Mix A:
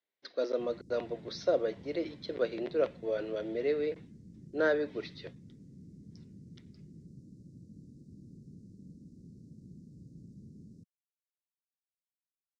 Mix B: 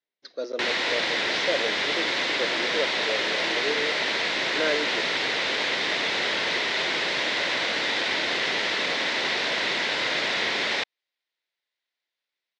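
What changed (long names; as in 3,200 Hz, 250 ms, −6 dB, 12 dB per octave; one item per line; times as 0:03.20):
background: remove inverse Chebyshev band-stop filter 820–3,300 Hz, stop band 80 dB
master: remove high-frequency loss of the air 110 metres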